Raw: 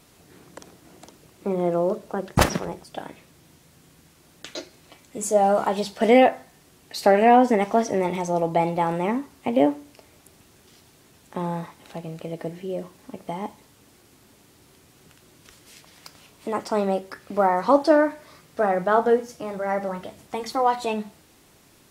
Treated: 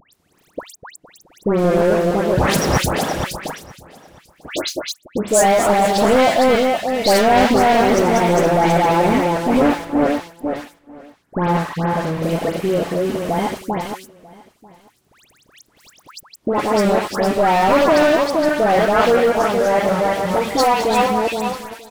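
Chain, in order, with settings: regenerating reverse delay 0.234 s, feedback 43%, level -3 dB; gate -39 dBFS, range -20 dB; 9.56–12.1 resonant high shelf 2300 Hz -9.5 dB, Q 3; in parallel at +0.5 dB: upward compressor, threshold -19 dBFS; on the sum: sample leveller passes 5; dispersion highs, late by 0.132 s, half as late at 2000 Hz; on a send: echo 0.942 s -23 dB; on the sum: gain -14.5 dB

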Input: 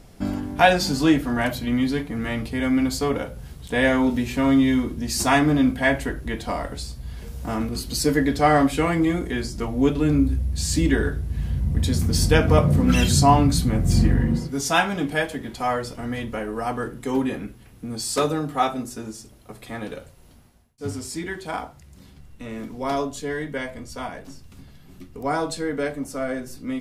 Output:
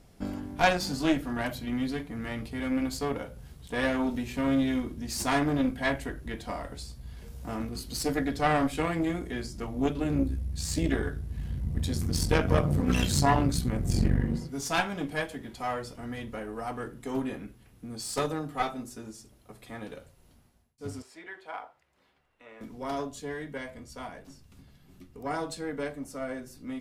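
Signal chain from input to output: added harmonics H 4 -12 dB, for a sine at -1.5 dBFS; 21.02–22.61 three-band isolator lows -23 dB, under 440 Hz, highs -16 dB, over 3200 Hz; gain -8.5 dB

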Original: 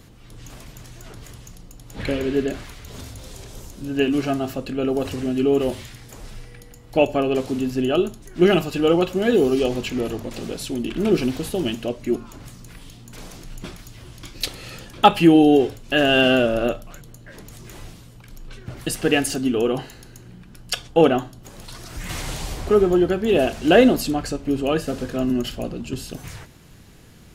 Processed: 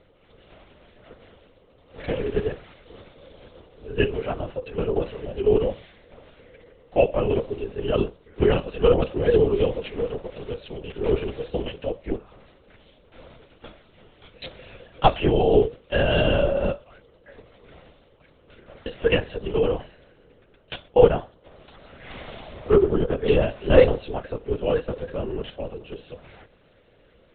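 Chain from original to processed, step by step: octaver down 1 oct, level 0 dB; ladder high-pass 390 Hz, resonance 55%; LPC vocoder at 8 kHz whisper; gain +3.5 dB

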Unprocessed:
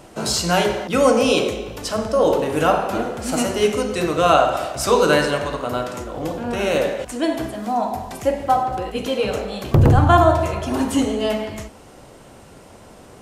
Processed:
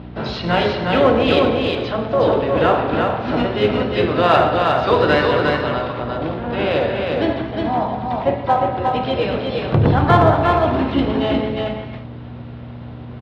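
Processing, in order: octaver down 2 oct, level -3 dB; hum 60 Hz, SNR 12 dB; elliptic low-pass 3800 Hz, stop band 50 dB; harmoniser -7 st -13 dB, -4 st -17 dB, +4 st -11 dB; in parallel at -6 dB: one-sided clip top -16 dBFS, bottom -6 dBFS; on the sum: HPF 91 Hz 12 dB/oct; on a send: echo 0.358 s -3.5 dB; on the sum: gain -2.5 dB

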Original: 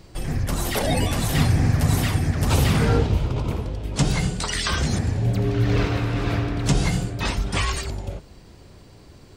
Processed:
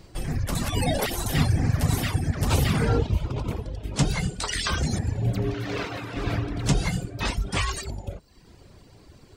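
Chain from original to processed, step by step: reverb removal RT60 0.78 s; 0.55–1.26 reverse; 5.54–6.17 HPF 360 Hz 6 dB/oct; gain -1.5 dB

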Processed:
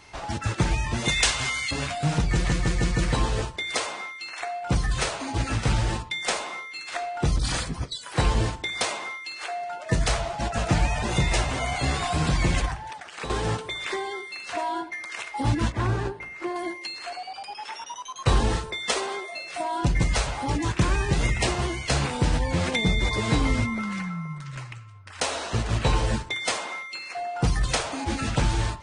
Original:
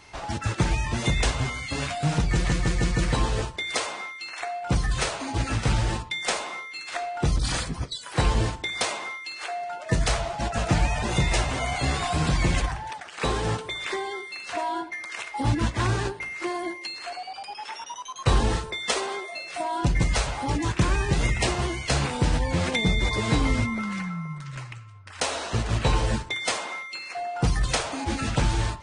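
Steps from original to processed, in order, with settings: 1.08–1.71 tilt shelf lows -8.5 dB, about 880 Hz; 12.74–13.3 compressor 3:1, threshold -34 dBFS, peak gain reduction 10 dB; 15.72–16.56 high shelf 2500 Hz -11.5 dB

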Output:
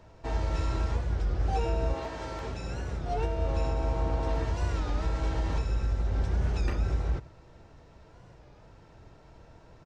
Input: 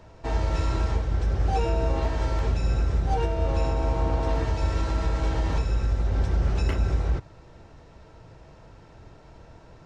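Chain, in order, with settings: 1.93–3.14 HPF 330 Hz -> 94 Hz 6 dB/oct; outdoor echo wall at 17 m, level -20 dB; record warp 33 1/3 rpm, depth 160 cents; gain -4.5 dB

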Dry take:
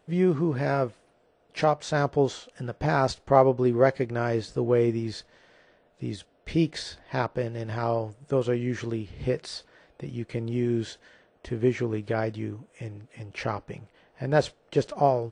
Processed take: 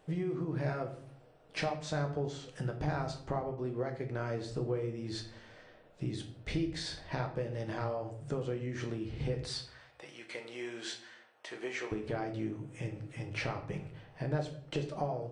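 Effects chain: 9.48–11.92 HPF 810 Hz 12 dB/oct; compressor 8:1, threshold -34 dBFS, peak gain reduction 21 dB; reverb RT60 0.65 s, pre-delay 6 ms, DRR 4 dB

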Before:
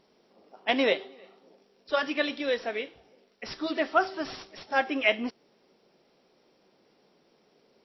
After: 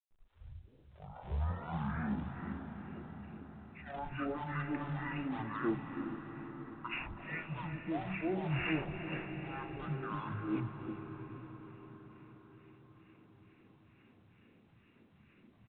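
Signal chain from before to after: tape start at the beginning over 1.14 s; expander -59 dBFS; reverse; compressor 10:1, threshold -36 dBFS, peak gain reduction 19 dB; reverse; limiter -31.5 dBFS, peak gain reduction 6.5 dB; harmonic tremolo 4.5 Hz, depth 100%, crossover 2000 Hz; in parallel at -11 dB: decimation with a swept rate 29×, swing 160% 2.1 Hz; on the sum: three bands offset in time highs, lows, mids 40/160 ms, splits 370/1300 Hz; reverb RT60 3.6 s, pre-delay 0.115 s, DRR 6.5 dB; speed mistake 15 ips tape played at 7.5 ips; gain +8.5 dB; µ-law 64 kbps 8000 Hz

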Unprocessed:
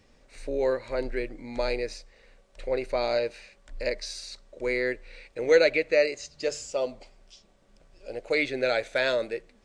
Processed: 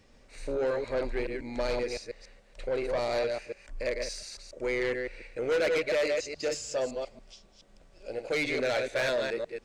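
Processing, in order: reverse delay 0.141 s, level -5.5 dB; 3.35–5.75 bell 3900 Hz -7.5 dB 0.47 oct; soft clip -23.5 dBFS, distortion -9 dB

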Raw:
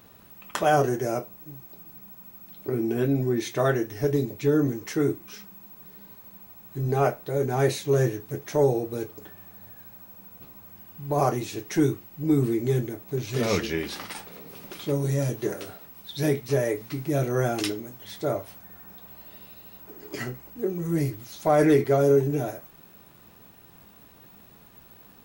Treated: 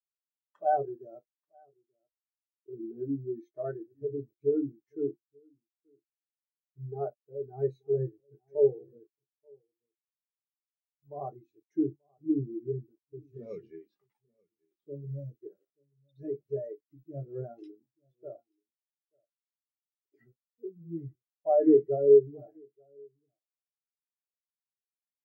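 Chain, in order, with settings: HPF 90 Hz 6 dB/oct; notches 50/100/150/200/250/300/350 Hz; requantised 6-bit, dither none; echo 0.883 s -13 dB; spectral expander 2.5:1; gain -2.5 dB

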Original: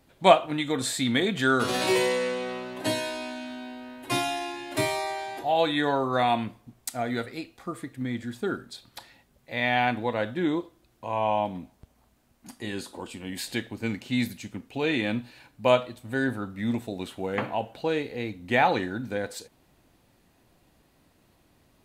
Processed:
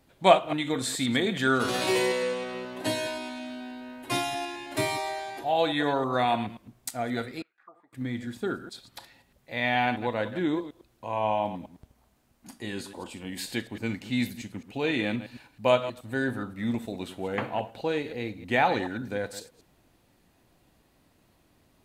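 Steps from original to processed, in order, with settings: reverse delay 0.106 s, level -12 dB; 7.42–7.93 auto-wah 760–2000 Hz, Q 9, down, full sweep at -30.5 dBFS; gain -1.5 dB

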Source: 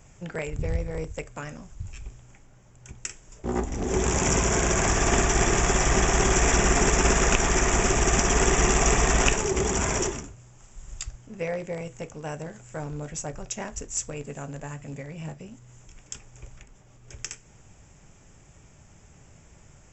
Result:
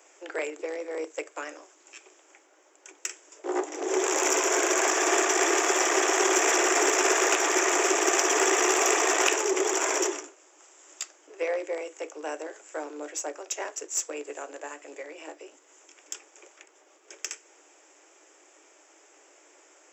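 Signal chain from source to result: one diode to ground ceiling -15.5 dBFS; Chebyshev high-pass 300 Hz, order 8; gain +2.5 dB

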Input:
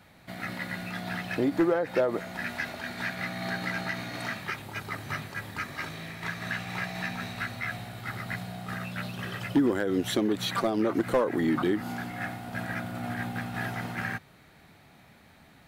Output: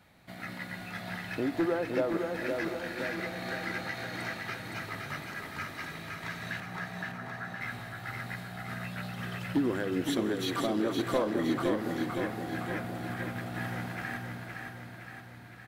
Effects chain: 6.6–7.61 Chebyshev band-pass 120–1800 Hz, order 5; feedback echo 0.516 s, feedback 57%, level -4.5 dB; reverb RT60 5.9 s, pre-delay 28 ms, DRR 12 dB; gain -5 dB

